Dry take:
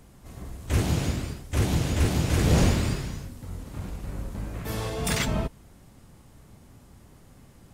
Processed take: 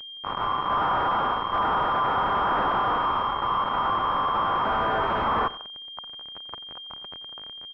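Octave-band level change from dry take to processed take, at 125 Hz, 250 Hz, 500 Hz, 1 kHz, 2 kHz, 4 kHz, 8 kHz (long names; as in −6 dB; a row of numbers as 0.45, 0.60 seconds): −14.5 dB, −7.0 dB, +2.5 dB, +18.0 dB, +5.5 dB, +4.5 dB, below −30 dB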